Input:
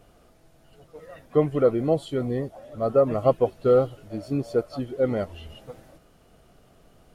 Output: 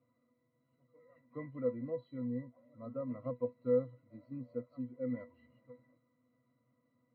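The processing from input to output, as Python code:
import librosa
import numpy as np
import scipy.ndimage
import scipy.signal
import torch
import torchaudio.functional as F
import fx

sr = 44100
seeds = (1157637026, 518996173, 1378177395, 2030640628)

y = fx.cabinet(x, sr, low_hz=170.0, low_slope=12, high_hz=4200.0, hz=(210.0, 490.0, 1300.0, 2100.0), db=(5, -4, 8, 6))
y = fx.octave_resonator(y, sr, note='B', decay_s=0.13)
y = y * librosa.db_to_amplitude(-6.5)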